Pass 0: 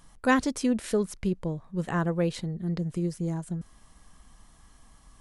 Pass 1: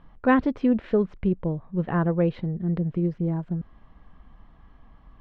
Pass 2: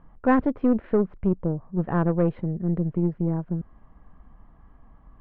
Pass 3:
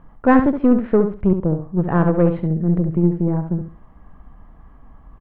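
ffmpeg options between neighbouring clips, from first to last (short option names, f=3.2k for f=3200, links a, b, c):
-af "lowpass=f=3.3k:w=0.5412,lowpass=f=3.3k:w=1.3066,highshelf=f=2k:g=-11.5,volume=4.5dB"
-af "aeval=exprs='0.447*(cos(1*acos(clip(val(0)/0.447,-1,1)))-cos(1*PI/2))+0.0251*(cos(8*acos(clip(val(0)/0.447,-1,1)))-cos(8*PI/2))':c=same,lowpass=1.6k"
-af "aecho=1:1:69|138|207:0.398|0.0836|0.0176,volume=6dB"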